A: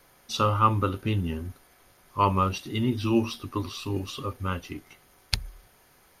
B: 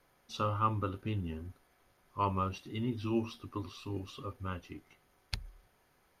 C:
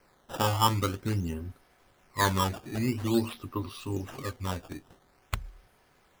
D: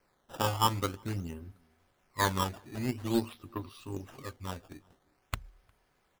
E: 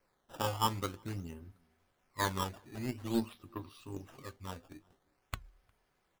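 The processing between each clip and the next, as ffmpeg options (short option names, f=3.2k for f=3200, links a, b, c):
-af "highshelf=f=4.1k:g=-7.5,volume=-9dB"
-af "acrusher=samples=12:mix=1:aa=0.000001:lfo=1:lforange=19.2:lforate=0.48,volume=6dB"
-filter_complex "[0:a]asplit=2[a][b];[b]adelay=355.7,volume=-26dB,highshelf=f=4k:g=-8[c];[a][c]amix=inputs=2:normalize=0,aeval=exprs='0.237*(cos(1*acos(clip(val(0)/0.237,-1,1)))-cos(1*PI/2))+0.0168*(cos(7*acos(clip(val(0)/0.237,-1,1)))-cos(7*PI/2))':c=same,volume=-2.5dB"
-af "flanger=delay=1.7:depth=5.5:regen=85:speed=0.39:shape=triangular"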